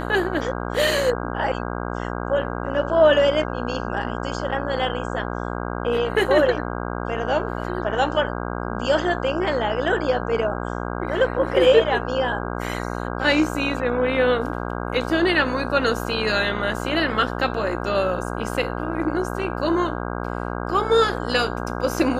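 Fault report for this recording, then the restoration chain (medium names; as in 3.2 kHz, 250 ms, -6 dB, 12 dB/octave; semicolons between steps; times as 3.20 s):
buzz 60 Hz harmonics 27 -28 dBFS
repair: de-hum 60 Hz, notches 27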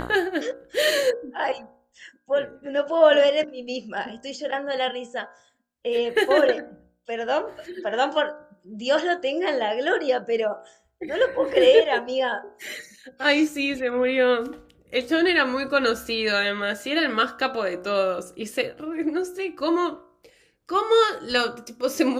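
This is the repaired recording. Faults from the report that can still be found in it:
nothing left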